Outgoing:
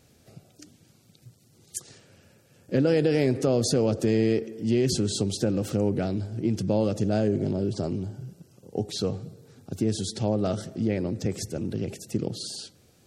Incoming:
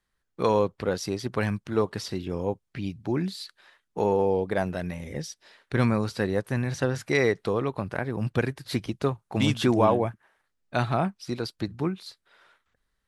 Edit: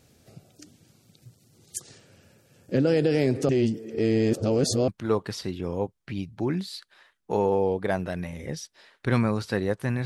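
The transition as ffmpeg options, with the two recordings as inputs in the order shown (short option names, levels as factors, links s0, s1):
-filter_complex "[0:a]apad=whole_dur=10.05,atrim=end=10.05,asplit=2[s0][s1];[s0]atrim=end=3.492[s2];[s1]atrim=start=3.488:end=4.882,asetpts=PTS-STARTPTS,areverse[s3];[1:a]atrim=start=1.548:end=6.72[s4];[s2][s3]acrossfade=d=0.004:c1=hsin:c2=hsin[s5];[s5][s4]acrossfade=d=0.004:c1=hsin:c2=hsin"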